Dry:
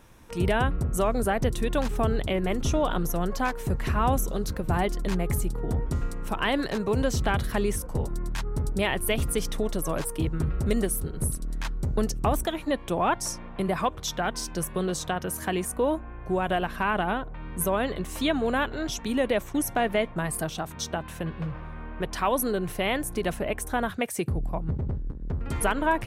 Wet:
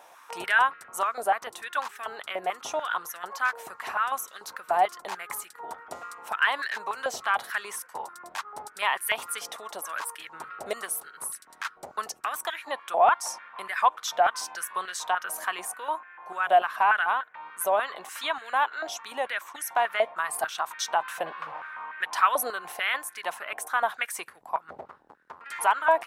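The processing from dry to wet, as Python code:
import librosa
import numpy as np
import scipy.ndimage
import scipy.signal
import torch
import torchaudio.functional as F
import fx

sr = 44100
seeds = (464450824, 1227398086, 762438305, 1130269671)

y = fx.rider(x, sr, range_db=10, speed_s=2.0)
y = fx.filter_held_highpass(y, sr, hz=6.8, low_hz=710.0, high_hz=1700.0)
y = y * librosa.db_to_amplitude(-2.5)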